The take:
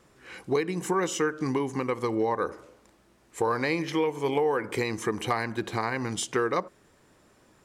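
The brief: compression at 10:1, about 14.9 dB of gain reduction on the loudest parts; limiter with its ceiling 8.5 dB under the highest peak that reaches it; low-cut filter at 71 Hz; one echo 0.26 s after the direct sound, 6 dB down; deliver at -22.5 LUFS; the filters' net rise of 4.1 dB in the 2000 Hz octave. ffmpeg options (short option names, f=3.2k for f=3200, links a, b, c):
-af "highpass=71,equalizer=f=2k:t=o:g=5,acompressor=threshold=-36dB:ratio=10,alimiter=level_in=6.5dB:limit=-24dB:level=0:latency=1,volume=-6.5dB,aecho=1:1:260:0.501,volume=18.5dB"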